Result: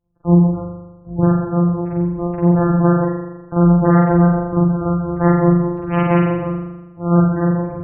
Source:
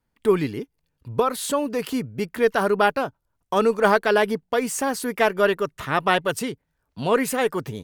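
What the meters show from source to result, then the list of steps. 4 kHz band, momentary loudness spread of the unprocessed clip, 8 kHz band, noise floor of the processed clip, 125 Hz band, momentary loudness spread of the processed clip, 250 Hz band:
below −15 dB, 11 LU, below −40 dB, −42 dBFS, +20.5 dB, 12 LU, +13.0 dB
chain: samples sorted by size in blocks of 256 samples
gate on every frequency bin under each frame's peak −15 dB strong
spring reverb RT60 1.1 s, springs 40 ms, chirp 45 ms, DRR −7 dB

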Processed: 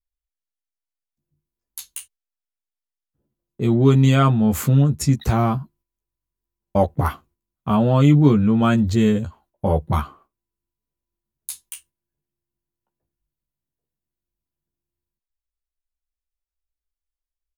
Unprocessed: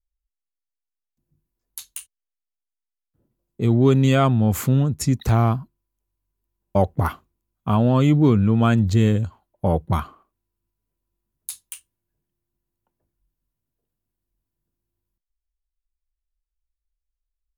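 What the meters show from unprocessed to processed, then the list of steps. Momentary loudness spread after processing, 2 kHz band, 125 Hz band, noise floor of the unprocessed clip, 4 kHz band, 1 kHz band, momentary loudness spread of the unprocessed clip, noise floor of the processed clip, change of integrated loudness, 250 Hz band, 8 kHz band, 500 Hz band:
20 LU, +1.0 dB, +1.0 dB, −85 dBFS, +1.5 dB, +1.5 dB, 19 LU, below −85 dBFS, +1.5 dB, +2.0 dB, +1.5 dB, +0.5 dB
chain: noise gate −53 dBFS, range −7 dB
double-tracking delay 14 ms −4.5 dB

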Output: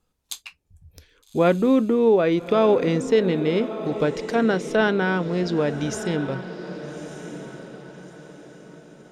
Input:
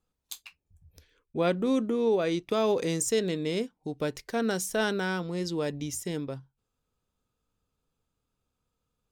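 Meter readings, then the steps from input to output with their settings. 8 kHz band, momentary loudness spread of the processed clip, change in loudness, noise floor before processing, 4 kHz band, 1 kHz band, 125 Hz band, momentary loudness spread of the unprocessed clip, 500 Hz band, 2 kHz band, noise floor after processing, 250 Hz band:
−4.0 dB, 18 LU, +7.5 dB, −83 dBFS, +3.0 dB, +8.0 dB, +8.5 dB, 13 LU, +8.5 dB, +7.5 dB, −67 dBFS, +8.5 dB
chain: treble cut that deepens with the level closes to 2,600 Hz, closed at −26.5 dBFS
feedback delay with all-pass diffusion 1,237 ms, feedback 40%, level −11.5 dB
level +8 dB

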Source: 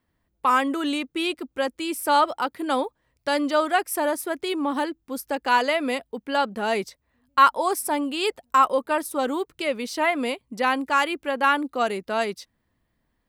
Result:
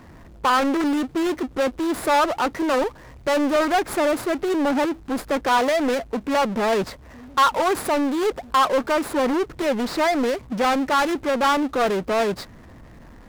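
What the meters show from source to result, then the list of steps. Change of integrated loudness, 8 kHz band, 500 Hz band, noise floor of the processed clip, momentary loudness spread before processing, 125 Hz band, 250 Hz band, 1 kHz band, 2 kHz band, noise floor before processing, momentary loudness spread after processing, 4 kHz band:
+2.5 dB, +1.0 dB, +4.5 dB, −45 dBFS, 8 LU, can't be measured, +5.0 dB, +0.5 dB, 0.0 dB, −74 dBFS, 5 LU, +1.0 dB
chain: running median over 15 samples
power curve on the samples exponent 0.5
highs frequency-modulated by the lows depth 0.43 ms
level −3.5 dB

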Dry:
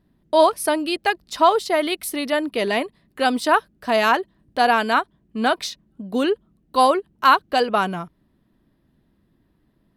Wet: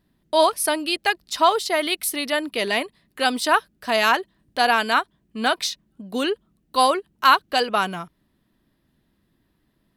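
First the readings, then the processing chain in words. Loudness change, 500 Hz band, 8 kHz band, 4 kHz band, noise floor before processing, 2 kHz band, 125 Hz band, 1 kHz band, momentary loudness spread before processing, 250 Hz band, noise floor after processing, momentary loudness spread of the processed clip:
−1.0 dB, −3.0 dB, +4.5 dB, +3.0 dB, −65 dBFS, +1.0 dB, can't be measured, −1.5 dB, 11 LU, −4.0 dB, −69 dBFS, 9 LU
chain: tilt shelving filter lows −4.5 dB, about 1,400 Hz

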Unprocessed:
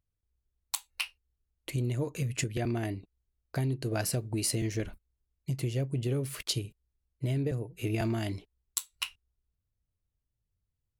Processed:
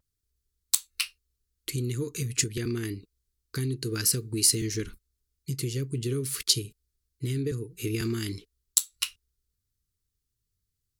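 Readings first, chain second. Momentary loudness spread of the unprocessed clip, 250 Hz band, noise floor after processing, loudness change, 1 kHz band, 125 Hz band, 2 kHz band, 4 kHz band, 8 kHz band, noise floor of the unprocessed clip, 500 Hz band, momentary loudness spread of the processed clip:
7 LU, +1.5 dB, −82 dBFS, +4.5 dB, −7.0 dB, 0.0 dB, +1.5 dB, +7.5 dB, +10.0 dB, −84 dBFS, +1.0 dB, 12 LU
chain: drawn EQ curve 170 Hz 0 dB, 450 Hz +3 dB, 650 Hz −28 dB, 1,200 Hz +2 dB, 2,700 Hz +1 dB, 4,400 Hz +10 dB
pitch vibrato 0.77 Hz 22 cents

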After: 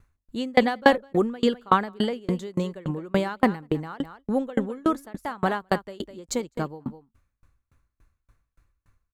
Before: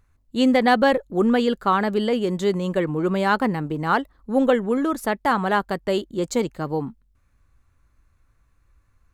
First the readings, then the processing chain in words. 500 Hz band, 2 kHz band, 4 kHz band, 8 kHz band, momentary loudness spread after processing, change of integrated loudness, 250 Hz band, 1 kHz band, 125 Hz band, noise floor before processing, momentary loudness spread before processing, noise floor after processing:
−4.5 dB, −4.0 dB, −3.5 dB, −1.5 dB, 13 LU, −4.0 dB, −4.5 dB, −4.0 dB, −3.0 dB, −64 dBFS, 7 LU, −81 dBFS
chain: on a send: single-tap delay 205 ms −16 dB
on the sum: tremolo with a ramp in dB decaying 3.5 Hz, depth 33 dB
level +5 dB

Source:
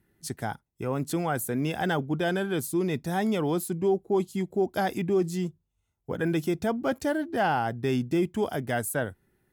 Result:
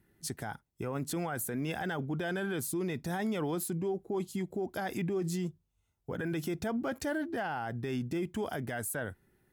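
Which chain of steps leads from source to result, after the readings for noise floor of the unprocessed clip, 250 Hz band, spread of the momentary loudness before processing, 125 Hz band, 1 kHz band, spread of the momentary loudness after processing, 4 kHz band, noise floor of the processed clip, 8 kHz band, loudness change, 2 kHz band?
−78 dBFS, −6.5 dB, 7 LU, −5.5 dB, −9.0 dB, 6 LU, −6.0 dB, −78 dBFS, −2.5 dB, −7.0 dB, −5.5 dB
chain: dynamic equaliser 1,700 Hz, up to +4 dB, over −44 dBFS, Q 1.4
brickwall limiter −26.5 dBFS, peak gain reduction 13 dB

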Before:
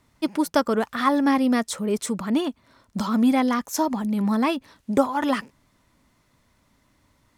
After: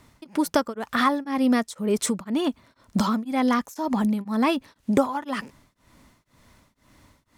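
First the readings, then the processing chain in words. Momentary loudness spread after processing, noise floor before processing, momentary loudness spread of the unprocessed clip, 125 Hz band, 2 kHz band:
7 LU, −65 dBFS, 8 LU, 0.0 dB, 0.0 dB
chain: downward compressor 2.5 to 1, threshold −29 dBFS, peak gain reduction 11 dB
tremolo along a rectified sine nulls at 2 Hz
level +8.5 dB

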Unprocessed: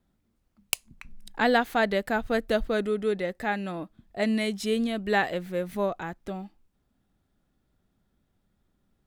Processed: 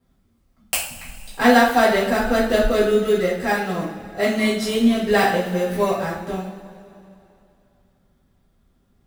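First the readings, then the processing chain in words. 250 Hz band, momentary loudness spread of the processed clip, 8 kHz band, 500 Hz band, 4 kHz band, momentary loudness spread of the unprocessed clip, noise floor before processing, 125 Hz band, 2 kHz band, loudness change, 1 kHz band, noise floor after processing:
+8.5 dB, 14 LU, +9.5 dB, +8.5 dB, +8.0 dB, 14 LU, −74 dBFS, +8.5 dB, +7.5 dB, +8.0 dB, +9.0 dB, −63 dBFS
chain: in parallel at −10 dB: sample-rate reduction 3,300 Hz, jitter 0%
on the sum: coupled-rooms reverb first 0.48 s, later 2.8 s, from −18 dB, DRR −9 dB
level −2 dB

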